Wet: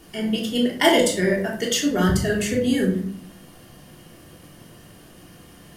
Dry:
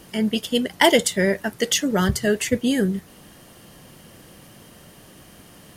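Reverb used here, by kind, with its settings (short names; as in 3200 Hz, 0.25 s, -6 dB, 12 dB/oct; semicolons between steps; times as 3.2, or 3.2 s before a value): shoebox room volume 690 m³, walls furnished, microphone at 3.3 m; gain -5.5 dB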